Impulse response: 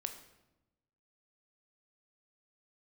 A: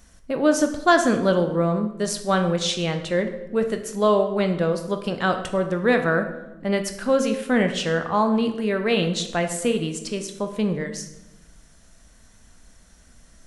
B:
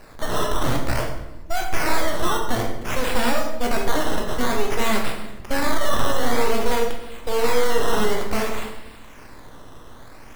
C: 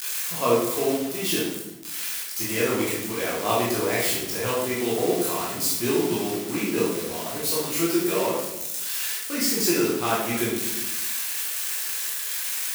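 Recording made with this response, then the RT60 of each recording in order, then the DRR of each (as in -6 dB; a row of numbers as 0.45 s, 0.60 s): A; 1.0 s, 0.95 s, 0.95 s; 6.0 dB, 0.5 dB, -7.0 dB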